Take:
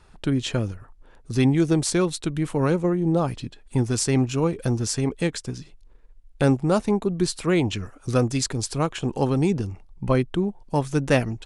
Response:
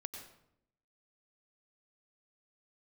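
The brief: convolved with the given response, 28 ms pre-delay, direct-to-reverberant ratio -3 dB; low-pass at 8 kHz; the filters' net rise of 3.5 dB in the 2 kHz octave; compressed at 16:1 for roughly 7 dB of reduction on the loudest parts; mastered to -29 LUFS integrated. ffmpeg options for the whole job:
-filter_complex "[0:a]lowpass=8000,equalizer=f=2000:t=o:g=4.5,acompressor=threshold=0.0891:ratio=16,asplit=2[s0][s1];[1:a]atrim=start_sample=2205,adelay=28[s2];[s1][s2]afir=irnorm=-1:irlink=0,volume=1.88[s3];[s0][s3]amix=inputs=2:normalize=0,volume=0.501"

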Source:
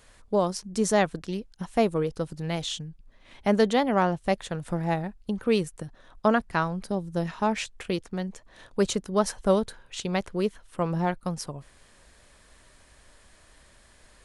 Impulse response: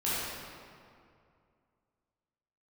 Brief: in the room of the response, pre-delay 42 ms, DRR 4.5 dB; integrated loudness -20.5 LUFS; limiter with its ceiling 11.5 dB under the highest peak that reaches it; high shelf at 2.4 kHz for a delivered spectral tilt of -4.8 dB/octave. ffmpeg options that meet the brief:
-filter_complex "[0:a]highshelf=f=2400:g=4,alimiter=limit=0.106:level=0:latency=1,asplit=2[s0][s1];[1:a]atrim=start_sample=2205,adelay=42[s2];[s1][s2]afir=irnorm=-1:irlink=0,volume=0.211[s3];[s0][s3]amix=inputs=2:normalize=0,volume=3.16"

